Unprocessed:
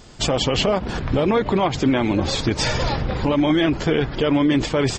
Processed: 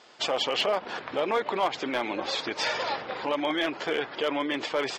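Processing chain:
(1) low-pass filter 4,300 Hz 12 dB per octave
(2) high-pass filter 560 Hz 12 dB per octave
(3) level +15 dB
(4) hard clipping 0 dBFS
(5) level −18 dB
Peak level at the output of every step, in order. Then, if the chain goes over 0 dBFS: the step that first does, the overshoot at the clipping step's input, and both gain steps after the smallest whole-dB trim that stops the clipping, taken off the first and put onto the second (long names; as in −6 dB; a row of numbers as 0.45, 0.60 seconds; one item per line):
−8.0, −9.0, +6.0, 0.0, −18.0 dBFS
step 3, 6.0 dB
step 3 +9 dB, step 5 −12 dB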